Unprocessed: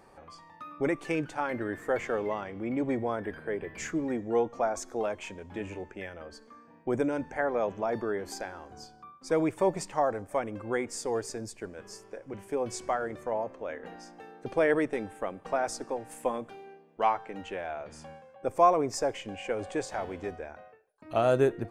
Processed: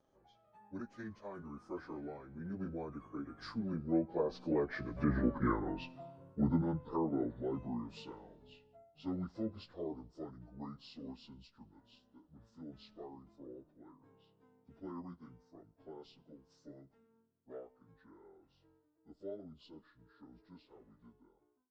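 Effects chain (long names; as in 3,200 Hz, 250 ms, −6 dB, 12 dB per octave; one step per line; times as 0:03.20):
phase-vocoder pitch shift without resampling −8 semitones
source passing by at 0:05.40, 33 m/s, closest 9.1 metres
treble cut that deepens with the level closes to 1,800 Hz, closed at −41 dBFS
level +10 dB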